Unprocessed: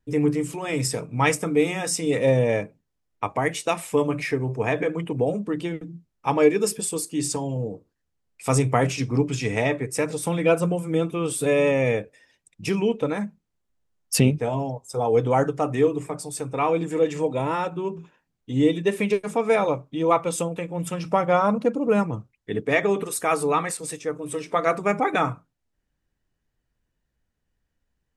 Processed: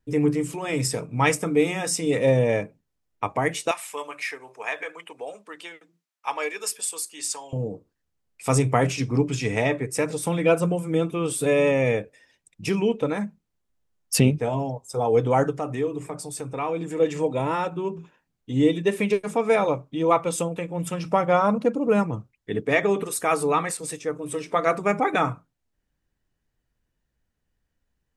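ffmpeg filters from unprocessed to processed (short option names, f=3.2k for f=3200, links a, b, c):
-filter_complex "[0:a]asettb=1/sr,asplit=3[a][b][c];[a]atrim=end=3.714[d];[b]atrim=start=3.71:end=7.53,asetpts=PTS-STARTPTS,afade=t=in:d=0.004:c=qsin,afade=t=out:st=3.816:d=0.004:c=qsin,highpass=1k[e];[c]atrim=start=7.526[f];[d][e]acrossfade=d=0.004:c1=hsin:c2=qsin[g];[g][f]acrossfade=d=0.004:c1=qsin:c2=hsin,asettb=1/sr,asplit=3[h][i][j];[h]atrim=end=15.584[k];[i]atrim=start=15.58:end=17,asetpts=PTS-STARTPTS,afade=t=in:d=0.004:c=qsin,afade=t=out:st=1.416:d=0.004:c=qsin,acompressor=threshold=-32dB:ratio=1.5:attack=3.2:release=140:knee=1:detection=peak[l];[j]atrim=start=16.996[m];[k][l]acrossfade=d=0.004:c1=hsin:c2=qsin[n];[n][m]acrossfade=d=0.004:c1=qsin:c2=hsin"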